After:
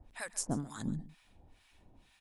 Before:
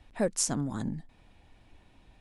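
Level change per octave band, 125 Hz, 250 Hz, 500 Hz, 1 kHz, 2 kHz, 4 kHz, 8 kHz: -4.5 dB, -5.5 dB, -14.0 dB, -5.5 dB, -1.0 dB, -10.0 dB, -8.5 dB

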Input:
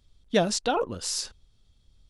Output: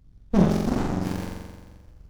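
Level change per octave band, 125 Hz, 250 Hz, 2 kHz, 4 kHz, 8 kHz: +12.5 dB, +9.5 dB, -4.0 dB, -11.5 dB, -13.5 dB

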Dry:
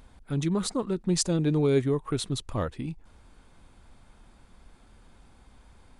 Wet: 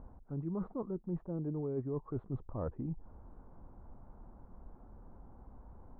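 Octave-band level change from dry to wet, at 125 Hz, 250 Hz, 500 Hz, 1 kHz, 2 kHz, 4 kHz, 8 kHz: -10.5 dB, -11.0 dB, -12.0 dB, -12.0 dB, under -25 dB, under -40 dB, under -40 dB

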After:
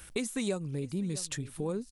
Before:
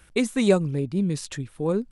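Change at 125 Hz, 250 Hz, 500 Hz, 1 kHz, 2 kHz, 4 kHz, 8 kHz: -9.0 dB, -10.5 dB, -11.5 dB, -11.5 dB, -9.0 dB, -5.5 dB, -0.5 dB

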